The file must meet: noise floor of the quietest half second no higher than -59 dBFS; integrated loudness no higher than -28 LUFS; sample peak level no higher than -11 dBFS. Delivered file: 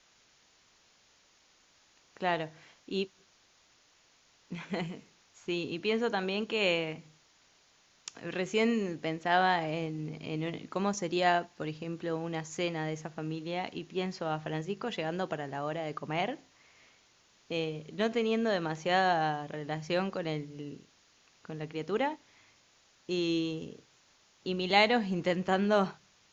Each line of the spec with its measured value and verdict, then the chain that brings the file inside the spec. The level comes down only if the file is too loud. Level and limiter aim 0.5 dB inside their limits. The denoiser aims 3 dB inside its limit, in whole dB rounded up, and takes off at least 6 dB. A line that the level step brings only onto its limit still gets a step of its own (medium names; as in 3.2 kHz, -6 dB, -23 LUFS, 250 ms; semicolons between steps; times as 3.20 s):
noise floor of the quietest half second -66 dBFS: pass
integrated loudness -32.5 LUFS: pass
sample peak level -10.0 dBFS: fail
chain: peak limiter -11.5 dBFS